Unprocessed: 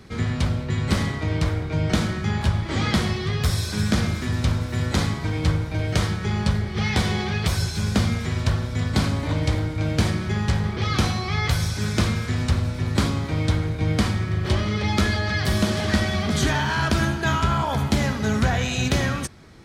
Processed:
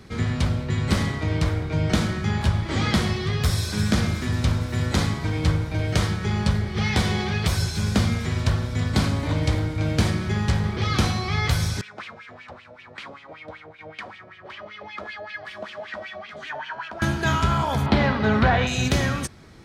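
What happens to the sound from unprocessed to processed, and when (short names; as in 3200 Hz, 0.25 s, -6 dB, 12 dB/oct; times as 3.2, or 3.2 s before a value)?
11.81–17.02 wah 5.2 Hz 570–2800 Hz, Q 4.3
17.86–18.67 EQ curve 130 Hz 0 dB, 960 Hz +7 dB, 4300 Hz 0 dB, 6800 Hz -19 dB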